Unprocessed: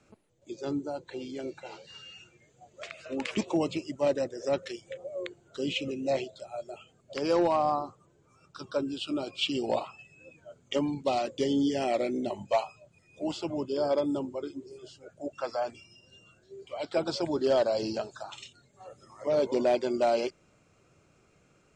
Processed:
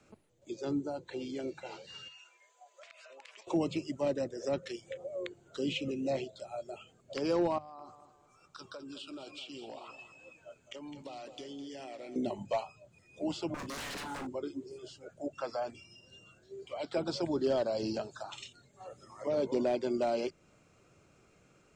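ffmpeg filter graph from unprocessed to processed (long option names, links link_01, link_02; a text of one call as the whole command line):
ffmpeg -i in.wav -filter_complex "[0:a]asettb=1/sr,asplit=3[link_01][link_02][link_03];[link_01]atrim=end=2.084[link_04];[link_02]atrim=start=2.08:end=3.47,asetpts=PTS-STARTPTS,afade=type=in:duration=0.004:curve=qsin,afade=type=out:start_time=1.386:duration=0.004:curve=qsin,highpass=frequency=620:width=0.5412,highpass=frequency=620:width=1.3066,acompressor=threshold=-51dB:ratio=6:attack=3.2:release=140:knee=1:detection=peak,aeval=exprs='val(0)+0.000282*sin(2*PI*1000*n/s)':channel_layout=same[link_05];[link_03]atrim=start=3.466[link_06];[link_04][link_05]acrossfade=duration=0.004:curve1=hsin:curve2=qsin[link_07];[link_07][link_06]acrossfade=duration=0.004:curve1=qsin:curve2=hsin,asettb=1/sr,asplit=3[link_08][link_09][link_10];[link_08]atrim=end=7.584[link_11];[link_09]atrim=start=7.58:end=12.16,asetpts=PTS-STARTPTS,afade=type=in:duration=0.004:curve=qsin,afade=type=out:start_time=4.576:duration=0.004:curve=qsin,equalizer=frequency=140:width=0.32:gain=-7.5,acompressor=threshold=-42dB:ratio=8:attack=3.2:release=140:knee=1:detection=peak,aecho=1:1:209|418|627|836:0.251|0.0879|0.0308|0.0108,atrim=end_sample=201978[link_12];[link_10]atrim=start=12.156[link_13];[link_11][link_12]acrossfade=duration=0.004:curve1=hsin:curve2=qsin[link_14];[link_14][link_13]acrossfade=duration=0.004:curve1=qsin:curve2=hsin,asettb=1/sr,asplit=3[link_15][link_16][link_17];[link_15]atrim=end=13.544[link_18];[link_16]atrim=start=13.54:end=14.27,asetpts=PTS-STARTPTS,afade=type=in:duration=0.004:curve=qsin,afade=type=out:start_time=0.726:duration=0.004:curve=qsin,highshelf=frequency=4200:gain=9,aeval=exprs='0.0188*(abs(mod(val(0)/0.0188+3,4)-2)-1)':channel_layout=same,asplit=2[link_19][link_20];[link_20]adelay=35,volume=-9dB[link_21];[link_19][link_21]amix=inputs=2:normalize=0,atrim=end_sample=32193[link_22];[link_17]atrim=start=14.266[link_23];[link_18][link_22]acrossfade=duration=0.004:curve1=hsin:curve2=qsin[link_24];[link_24][link_23]acrossfade=duration=0.004:curve1=qsin:curve2=hsin,bandreject=frequency=50:width_type=h:width=6,bandreject=frequency=100:width_type=h:width=6,bandreject=frequency=150:width_type=h:width=6,acrossover=split=320[link_25][link_26];[link_26]acompressor=threshold=-42dB:ratio=1.5[link_27];[link_25][link_27]amix=inputs=2:normalize=0" out.wav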